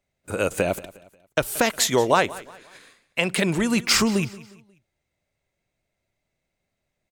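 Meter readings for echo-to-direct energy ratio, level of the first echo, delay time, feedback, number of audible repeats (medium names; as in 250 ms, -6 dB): -18.5 dB, -19.0 dB, 179 ms, 38%, 2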